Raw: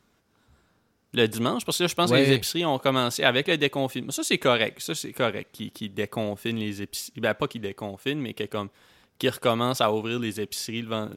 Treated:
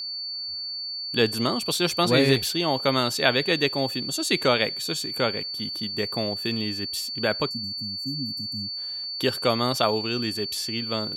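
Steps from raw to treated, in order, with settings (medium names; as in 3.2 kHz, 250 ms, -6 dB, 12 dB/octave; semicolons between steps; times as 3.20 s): spectral selection erased 7.49–8.77 s, 300–4800 Hz; whistle 4.5 kHz -30 dBFS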